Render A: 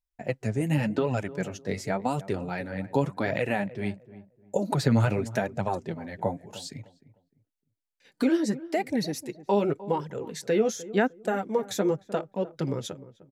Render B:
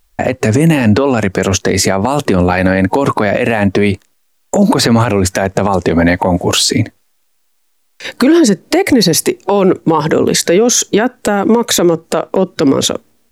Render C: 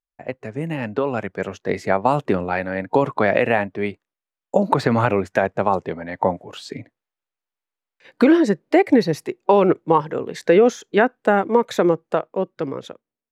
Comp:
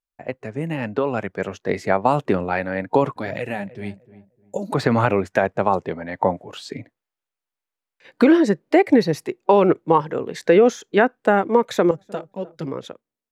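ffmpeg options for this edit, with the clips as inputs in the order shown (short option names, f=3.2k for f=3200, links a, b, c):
-filter_complex "[0:a]asplit=2[a][b];[2:a]asplit=3[c][d][e];[c]atrim=end=3.162[f];[a]atrim=start=3.158:end=4.742[g];[d]atrim=start=4.738:end=11.912[h];[b]atrim=start=11.908:end=12.662[i];[e]atrim=start=12.658[j];[f][g]acrossfade=d=0.004:c1=hsin:c2=hsin[k];[k][h]acrossfade=d=0.004:c1=hsin:c2=hsin[l];[l][i]acrossfade=d=0.004:c1=hsin:c2=hsin[m];[m][j]acrossfade=d=0.004:c1=hsin:c2=hsin"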